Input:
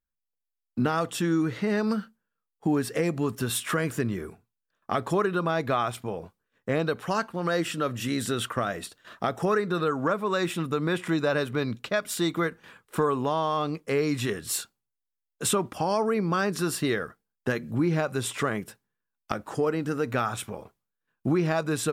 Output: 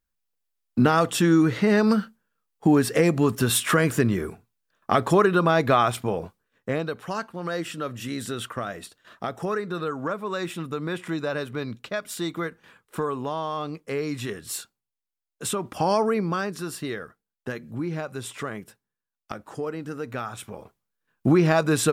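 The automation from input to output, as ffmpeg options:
ffmpeg -i in.wav -af "volume=25dB,afade=type=out:start_time=6.22:duration=0.64:silence=0.334965,afade=type=in:start_time=15.6:duration=0.27:silence=0.421697,afade=type=out:start_time=15.87:duration=0.69:silence=0.334965,afade=type=in:start_time=20.36:duration=0.91:silence=0.281838" out.wav

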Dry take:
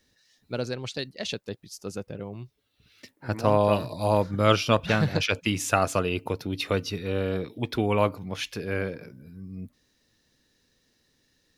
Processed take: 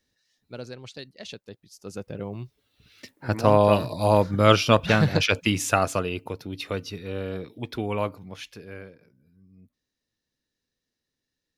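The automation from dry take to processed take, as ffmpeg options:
ffmpeg -i in.wav -af "volume=3.5dB,afade=type=in:start_time=1.75:duration=0.51:silence=0.281838,afade=type=out:start_time=5.42:duration=0.84:silence=0.421697,afade=type=out:start_time=7.98:duration=0.98:silence=0.266073" out.wav

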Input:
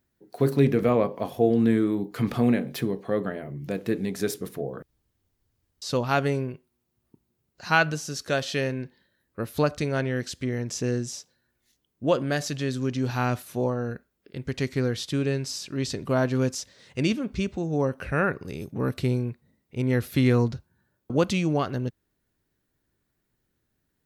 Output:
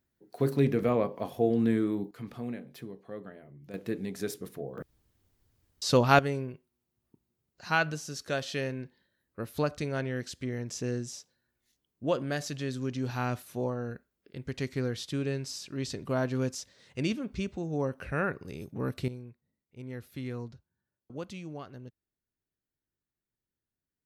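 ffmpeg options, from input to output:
ffmpeg -i in.wav -af "asetnsamples=nb_out_samples=441:pad=0,asendcmd='2.11 volume volume -15.5dB;3.74 volume volume -7dB;4.78 volume volume 3dB;6.19 volume volume -6dB;19.08 volume volume -17dB',volume=-5dB" out.wav

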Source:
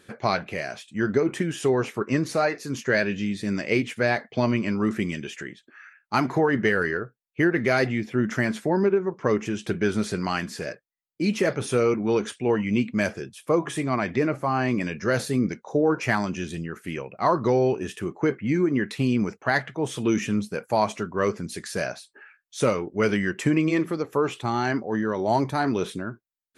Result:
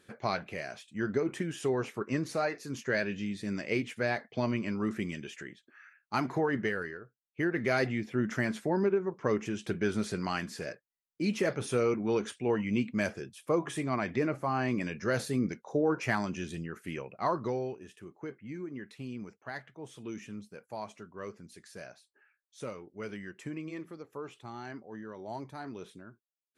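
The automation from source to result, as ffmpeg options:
ffmpeg -i in.wav -af "volume=3dB,afade=type=out:start_time=6.55:duration=0.44:silence=0.334965,afade=type=in:start_time=6.99:duration=0.75:silence=0.281838,afade=type=out:start_time=17.09:duration=0.69:silence=0.266073" out.wav

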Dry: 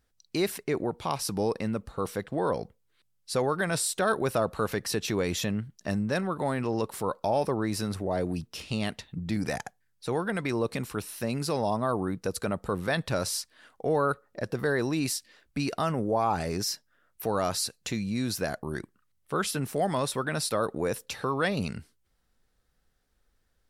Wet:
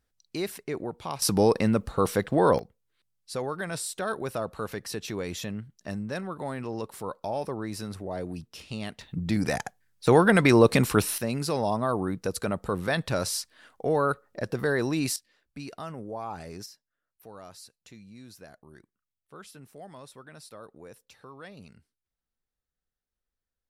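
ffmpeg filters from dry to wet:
ffmpeg -i in.wav -af "asetnsamples=nb_out_samples=441:pad=0,asendcmd='1.22 volume volume 7dB;2.59 volume volume -5dB;9.01 volume volume 3.5dB;10.07 volume volume 11dB;11.18 volume volume 1dB;15.16 volume volume -10dB;16.66 volume volume -18dB',volume=-4dB" out.wav

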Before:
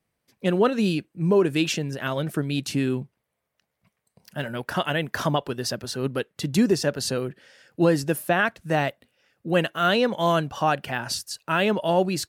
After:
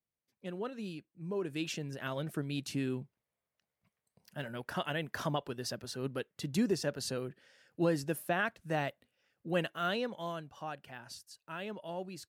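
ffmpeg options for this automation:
ffmpeg -i in.wav -af "volume=-10.5dB,afade=type=in:start_time=1.26:duration=0.71:silence=0.375837,afade=type=out:start_time=9.66:duration=0.7:silence=0.354813" out.wav

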